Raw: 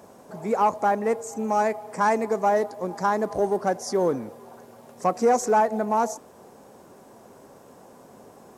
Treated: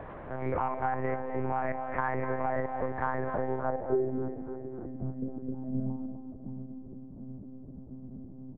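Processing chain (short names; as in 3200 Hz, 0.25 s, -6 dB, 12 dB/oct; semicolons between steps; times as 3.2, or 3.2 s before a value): stepped spectrum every 50 ms; limiter -18 dBFS, peak gain reduction 7.5 dB; compressor 3:1, threshold -30 dBFS, peak gain reduction 6.5 dB; low-pass sweep 1900 Hz -> 180 Hz, 3.55–4.2; on a send: split-band echo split 300 Hz, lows 0.725 s, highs 0.287 s, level -12.5 dB; on the sum: monotone LPC vocoder at 8 kHz 130 Hz; echo 0.25 s -12 dB; three-band squash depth 40%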